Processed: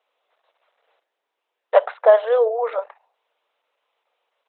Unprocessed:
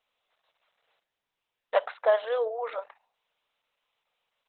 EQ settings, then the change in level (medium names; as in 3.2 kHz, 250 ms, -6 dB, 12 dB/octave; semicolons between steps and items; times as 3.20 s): high-pass 400 Hz 24 dB/octave; tilt EQ -3.5 dB/octave; +8.0 dB